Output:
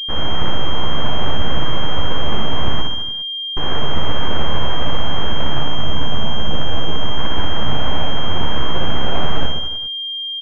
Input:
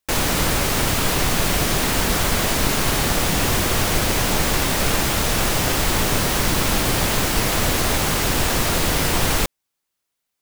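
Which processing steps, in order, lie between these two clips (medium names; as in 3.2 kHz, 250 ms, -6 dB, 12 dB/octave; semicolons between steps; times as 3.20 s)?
full-wave rectifier; chorus voices 6, 0.2 Hz, delay 14 ms, depth 1 ms; 2.81–3.57 s: Schmitt trigger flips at -19 dBFS; 5.63–7.19 s: distance through air 230 m; on a send: reverse bouncing-ball echo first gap 60 ms, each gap 1.15×, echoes 5; on the sum: class-D stage that switches slowly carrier 3.2 kHz; trim +1.5 dB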